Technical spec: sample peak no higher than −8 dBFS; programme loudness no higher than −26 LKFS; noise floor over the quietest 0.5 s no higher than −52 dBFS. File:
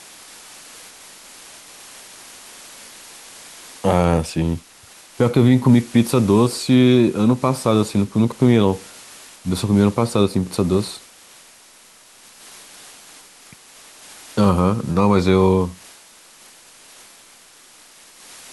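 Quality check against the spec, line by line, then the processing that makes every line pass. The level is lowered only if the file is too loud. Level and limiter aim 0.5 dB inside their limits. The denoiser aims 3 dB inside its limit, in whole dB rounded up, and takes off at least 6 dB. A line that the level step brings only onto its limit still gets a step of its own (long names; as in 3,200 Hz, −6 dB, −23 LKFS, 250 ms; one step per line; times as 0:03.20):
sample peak −4.0 dBFS: out of spec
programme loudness −17.5 LKFS: out of spec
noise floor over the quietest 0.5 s −48 dBFS: out of spec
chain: level −9 dB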